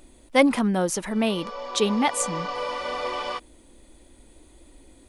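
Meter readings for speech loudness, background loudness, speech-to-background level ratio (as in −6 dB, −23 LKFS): −24.0 LKFS, −31.5 LKFS, 7.5 dB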